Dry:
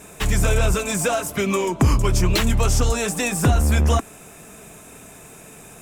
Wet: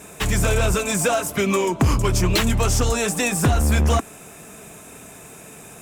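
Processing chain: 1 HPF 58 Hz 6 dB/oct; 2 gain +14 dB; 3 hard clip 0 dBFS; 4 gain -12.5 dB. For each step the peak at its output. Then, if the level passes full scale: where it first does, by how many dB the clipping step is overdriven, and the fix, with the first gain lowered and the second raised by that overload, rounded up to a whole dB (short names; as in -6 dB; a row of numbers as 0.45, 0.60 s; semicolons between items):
-8.0, +6.0, 0.0, -12.5 dBFS; step 2, 6.0 dB; step 2 +8 dB, step 4 -6.5 dB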